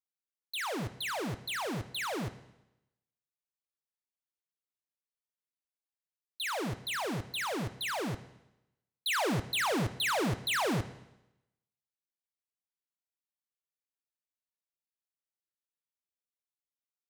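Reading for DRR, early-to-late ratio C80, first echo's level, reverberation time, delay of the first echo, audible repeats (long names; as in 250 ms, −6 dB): 11.0 dB, 16.0 dB, no echo audible, 0.90 s, no echo audible, no echo audible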